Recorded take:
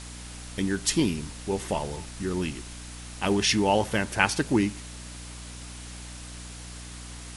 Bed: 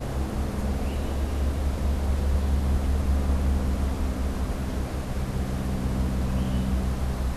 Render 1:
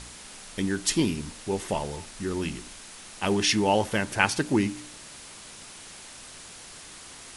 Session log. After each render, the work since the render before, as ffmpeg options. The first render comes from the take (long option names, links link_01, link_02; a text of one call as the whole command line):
ffmpeg -i in.wav -af "bandreject=frequency=60:width_type=h:width=4,bandreject=frequency=120:width_type=h:width=4,bandreject=frequency=180:width_type=h:width=4,bandreject=frequency=240:width_type=h:width=4,bandreject=frequency=300:width_type=h:width=4" out.wav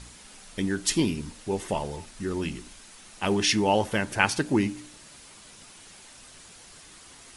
ffmpeg -i in.wav -af "afftdn=noise_reduction=6:noise_floor=-45" out.wav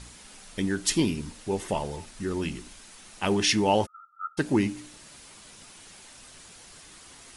ffmpeg -i in.wav -filter_complex "[0:a]asplit=3[link_01][link_02][link_03];[link_01]afade=type=out:start_time=3.85:duration=0.02[link_04];[link_02]asuperpass=centerf=1300:order=12:qfactor=7.9,afade=type=in:start_time=3.85:duration=0.02,afade=type=out:start_time=4.37:duration=0.02[link_05];[link_03]afade=type=in:start_time=4.37:duration=0.02[link_06];[link_04][link_05][link_06]amix=inputs=3:normalize=0" out.wav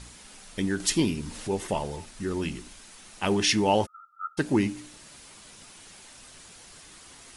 ffmpeg -i in.wav -filter_complex "[0:a]asettb=1/sr,asplit=3[link_01][link_02][link_03];[link_01]atrim=end=0.804[link_04];[link_02]atrim=start=0.8:end=1.67,asetpts=PTS-STARTPTS,afade=type=in:duration=0.004:curve=qsin,afade=type=out:start_time=0.866:duration=0.004:curve=qsin,acompressor=mode=upward:threshold=-30dB:ratio=2.5:attack=3.2:release=140:knee=2.83:detection=peak[link_05];[link_03]atrim=start=1.666[link_06];[link_04][link_05]acrossfade=duration=0.004:curve1=hsin:curve2=qsin[link_07];[link_07][link_06]acrossfade=duration=0.004:curve1=qsin:curve2=hsin" out.wav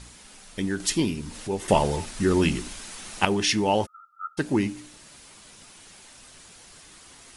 ffmpeg -i in.wav -filter_complex "[0:a]asplit=3[link_01][link_02][link_03];[link_01]atrim=end=1.682[link_04];[link_02]atrim=start=1.678:end=3.252,asetpts=PTS-STARTPTS,volume=9dB[link_05];[link_03]atrim=start=3.248[link_06];[link_04][link_05]acrossfade=duration=0.004:curve1=hsin:curve2=hsin[link_07];[link_07][link_06]acrossfade=duration=0.004:curve1=hsin:curve2=hsin" out.wav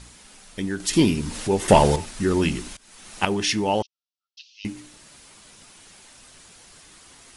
ffmpeg -i in.wav -filter_complex "[0:a]asettb=1/sr,asplit=3[link_01][link_02][link_03];[link_01]atrim=end=0.934[link_04];[link_02]atrim=start=0.93:end=1.96,asetpts=PTS-STARTPTS,afade=type=in:duration=0.004:curve=qsin,afade=type=out:start_time=1.026:duration=0.004:curve=qsin,acontrast=82[link_05];[link_03]atrim=start=1.956[link_06];[link_04][link_05]acrossfade=duration=0.004:curve1=hsin:curve2=qsin[link_07];[link_07][link_06]acrossfade=duration=0.004:curve1=qsin:curve2=hsin,asettb=1/sr,asplit=3[link_08][link_09][link_10];[link_08]atrim=end=3.824[link_11];[link_09]atrim=start=3.82:end=4.65,asetpts=PTS-STARTPTS,afade=type=in:duration=0.004:curve=qsin,afade=type=out:start_time=0.826:duration=0.004:curve=qsin,asuperpass=centerf=4000:order=12:qfactor=1.2[link_12];[link_10]atrim=start=4.646[link_13];[link_11][link_12]acrossfade=duration=0.004:curve1=hsin:curve2=qsin[link_14];[link_14][link_13]acrossfade=duration=0.004:curve1=qsin:curve2=hsin,asplit=2[link_15][link_16];[link_15]atrim=end=2.77,asetpts=PTS-STARTPTS,afade=type=out:start_time=2.766:duration=0.004:curve=hsin:silence=0.0794328[link_17];[link_16]atrim=start=2.77,asetpts=PTS-STARTPTS,afade=type=in:duration=0.5:silence=0.0794328[link_18];[link_17][link_18]concat=n=2:v=0:a=1" out.wav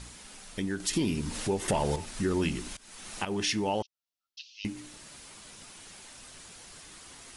ffmpeg -i in.wav -af "alimiter=limit=-11dB:level=0:latency=1:release=158,acompressor=threshold=-37dB:ratio=1.5" out.wav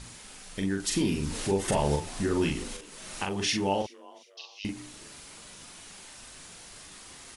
ffmpeg -i in.wav -filter_complex "[0:a]asplit=2[link_01][link_02];[link_02]adelay=41,volume=-4dB[link_03];[link_01][link_03]amix=inputs=2:normalize=0,asplit=4[link_04][link_05][link_06][link_07];[link_05]adelay=364,afreqshift=130,volume=-23dB[link_08];[link_06]adelay=728,afreqshift=260,volume=-30.5dB[link_09];[link_07]adelay=1092,afreqshift=390,volume=-38.1dB[link_10];[link_04][link_08][link_09][link_10]amix=inputs=4:normalize=0" out.wav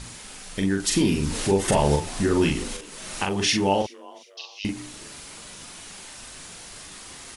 ffmpeg -i in.wav -af "volume=6dB" out.wav